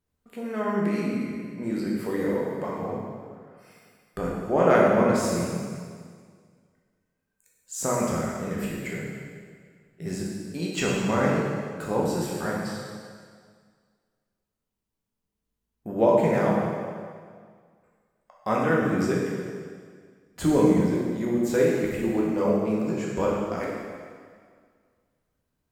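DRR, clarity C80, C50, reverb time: −4.0 dB, 1.5 dB, −0.5 dB, 1.9 s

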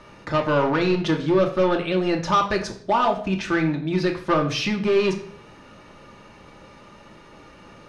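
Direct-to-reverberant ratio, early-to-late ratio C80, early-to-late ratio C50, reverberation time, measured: 1.5 dB, 14.0 dB, 10.0 dB, 0.55 s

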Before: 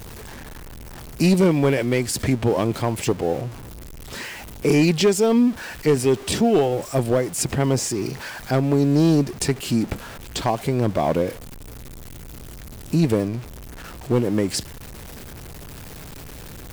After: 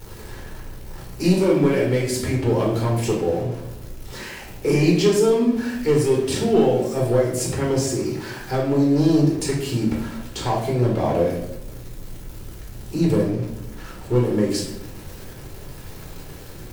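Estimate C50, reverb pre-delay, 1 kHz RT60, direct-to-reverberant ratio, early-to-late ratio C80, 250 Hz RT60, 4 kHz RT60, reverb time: 4.0 dB, 4 ms, 0.70 s, −3.0 dB, 7.5 dB, 1.2 s, 0.55 s, 0.85 s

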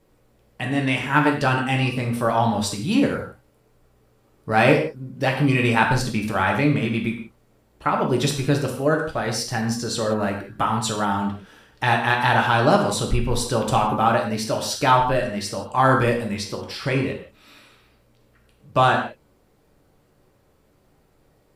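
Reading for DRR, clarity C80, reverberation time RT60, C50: 0.5 dB, 9.0 dB, non-exponential decay, 6.0 dB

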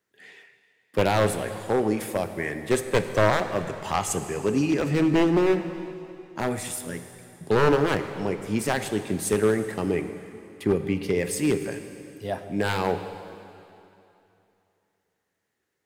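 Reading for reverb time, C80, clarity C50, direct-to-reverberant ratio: 2.9 s, 10.5 dB, 9.5 dB, 8.5 dB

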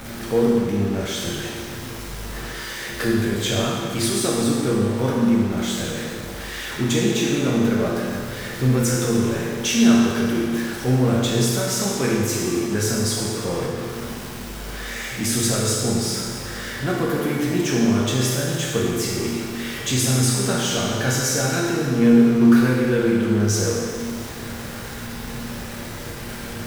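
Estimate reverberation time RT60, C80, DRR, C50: 1.9 s, 1.0 dB, −5.0 dB, −0.5 dB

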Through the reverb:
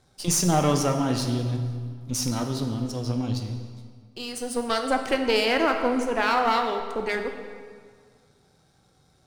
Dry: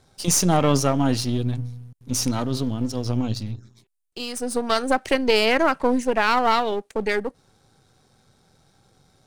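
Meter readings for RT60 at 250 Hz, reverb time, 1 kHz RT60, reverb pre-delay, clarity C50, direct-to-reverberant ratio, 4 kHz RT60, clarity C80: 1.8 s, 1.9 s, 1.9 s, 4 ms, 6.5 dB, 4.5 dB, 1.4 s, 8.0 dB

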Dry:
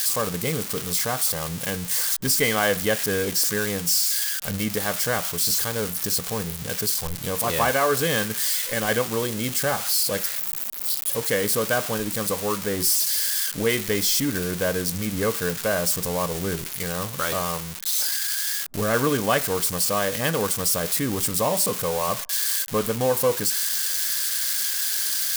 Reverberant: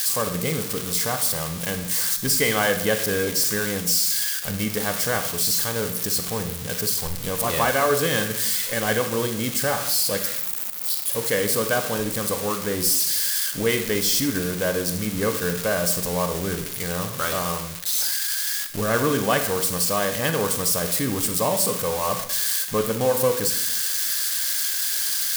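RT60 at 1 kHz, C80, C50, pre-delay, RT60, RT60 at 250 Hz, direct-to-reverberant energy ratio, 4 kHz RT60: 0.70 s, 12.5 dB, 9.5 dB, 33 ms, 0.75 s, 0.90 s, 7.5 dB, 0.65 s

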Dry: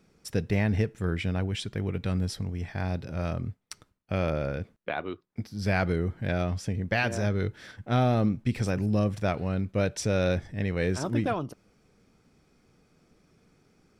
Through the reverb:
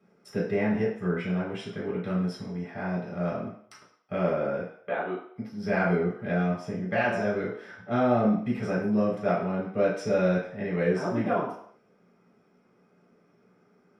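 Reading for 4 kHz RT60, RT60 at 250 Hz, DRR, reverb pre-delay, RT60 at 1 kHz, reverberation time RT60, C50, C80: 0.60 s, 0.45 s, −8.0 dB, 3 ms, 0.65 s, 0.65 s, 4.5 dB, 8.0 dB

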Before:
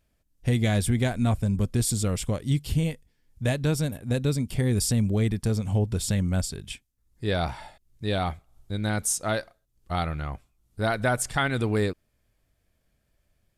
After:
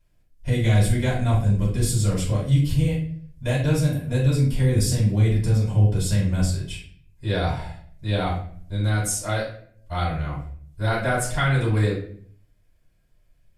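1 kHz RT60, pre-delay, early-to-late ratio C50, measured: 0.45 s, 3 ms, 4.5 dB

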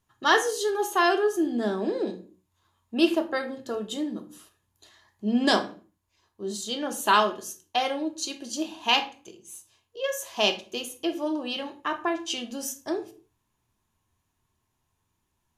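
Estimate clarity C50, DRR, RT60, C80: 13.5 dB, 6.5 dB, 0.45 s, 18.5 dB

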